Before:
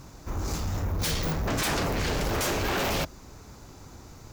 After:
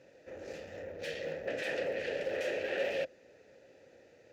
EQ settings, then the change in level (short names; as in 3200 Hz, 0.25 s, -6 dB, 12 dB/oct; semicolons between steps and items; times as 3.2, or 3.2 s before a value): vowel filter e; HPF 59 Hz; +4.5 dB